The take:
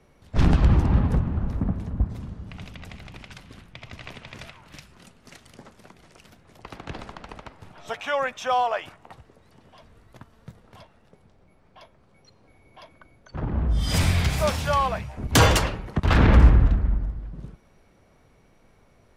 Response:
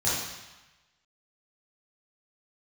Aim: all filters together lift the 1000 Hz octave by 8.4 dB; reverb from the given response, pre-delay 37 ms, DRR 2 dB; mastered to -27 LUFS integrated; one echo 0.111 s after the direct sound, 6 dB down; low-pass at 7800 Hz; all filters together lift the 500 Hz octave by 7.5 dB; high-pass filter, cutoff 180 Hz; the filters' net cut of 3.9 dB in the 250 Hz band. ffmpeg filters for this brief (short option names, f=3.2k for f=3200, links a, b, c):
-filter_complex "[0:a]highpass=180,lowpass=7.8k,equalizer=f=250:t=o:g=-5.5,equalizer=f=500:t=o:g=7.5,equalizer=f=1k:t=o:g=8.5,aecho=1:1:111:0.501,asplit=2[a][b];[1:a]atrim=start_sample=2205,adelay=37[c];[b][c]afir=irnorm=-1:irlink=0,volume=-13.5dB[d];[a][d]amix=inputs=2:normalize=0,volume=-9dB"